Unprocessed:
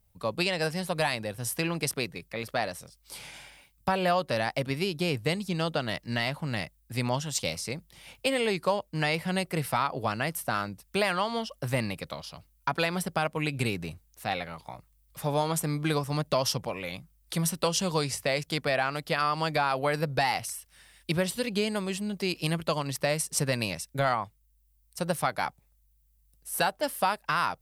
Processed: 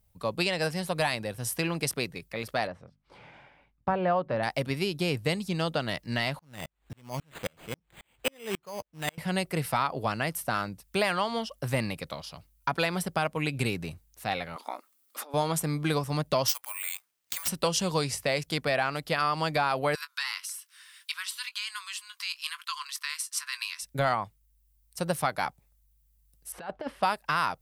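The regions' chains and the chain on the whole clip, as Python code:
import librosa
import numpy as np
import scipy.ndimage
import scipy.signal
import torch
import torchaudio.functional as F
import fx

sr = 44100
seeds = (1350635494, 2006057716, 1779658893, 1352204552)

y = fx.chain(x, sr, fx.lowpass(hz=1500.0, slope=12),
    fx.hum_notches(base_hz=50, count=5), at=(2.67, 4.43))
y = fx.chain(y, sr, fx.law_mismatch(coded='mu'),
    fx.resample_bad(factor=8, down='none', up='hold'),
    fx.tremolo_decay(direction='swelling', hz=3.7, depth_db=39), at=(6.39, 9.18))
y = fx.chain(y, sr, fx.peak_eq(hz=1300.0, db=7.5, octaves=0.37),
    fx.over_compress(threshold_db=-39.0, ratio=-1.0),
    fx.brickwall_highpass(low_hz=220.0), at=(14.56, 15.34))
y = fx.chain(y, sr, fx.highpass(hz=1100.0, slope=24),
    fx.air_absorb(metres=56.0),
    fx.resample_bad(factor=4, down='none', up='zero_stuff'), at=(16.48, 17.48))
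y = fx.chain(y, sr, fx.cheby_ripple_highpass(hz=1000.0, ripple_db=3),
    fx.doubler(ms=20.0, db=-14),
    fx.band_squash(depth_pct=40), at=(19.95, 23.82))
y = fx.chain(y, sr, fx.over_compress(threshold_db=-31.0, ratio=-0.5),
    fx.lowpass(hz=2500.0, slope=12), at=(26.52, 27.03))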